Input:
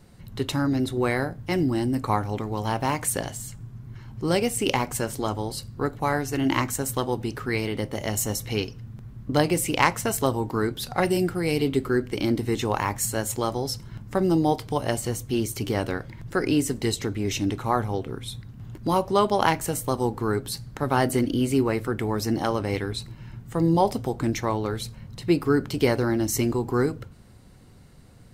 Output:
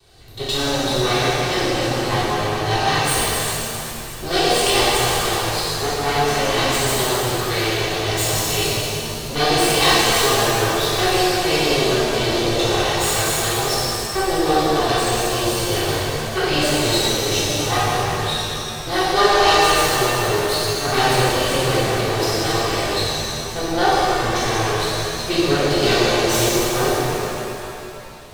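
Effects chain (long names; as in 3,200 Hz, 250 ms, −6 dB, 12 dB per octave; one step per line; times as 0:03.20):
lower of the sound and its delayed copy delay 2.6 ms
octave-band graphic EQ 250/500/4,000 Hz −9/+5/+11 dB
reverb with rising layers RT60 2.9 s, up +7 semitones, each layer −8 dB, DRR −10.5 dB
level −3.5 dB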